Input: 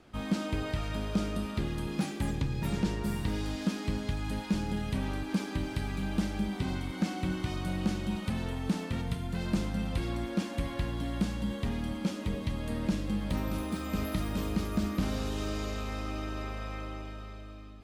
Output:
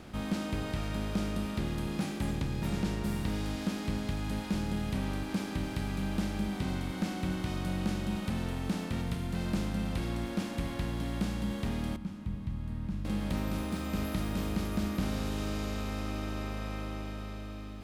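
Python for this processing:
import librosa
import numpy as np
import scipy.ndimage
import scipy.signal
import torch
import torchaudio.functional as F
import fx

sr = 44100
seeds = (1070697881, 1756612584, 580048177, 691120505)

y = fx.bin_compress(x, sr, power=0.6)
y = fx.curve_eq(y, sr, hz=(140.0, 530.0, 930.0, 5700.0), db=(0, -18, -10, -17), at=(11.96, 13.05))
y = y * librosa.db_to_amplitude(-4.5)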